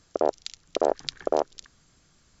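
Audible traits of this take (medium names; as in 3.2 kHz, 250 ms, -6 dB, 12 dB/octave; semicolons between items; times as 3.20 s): noise floor -63 dBFS; spectral tilt -3.5 dB/octave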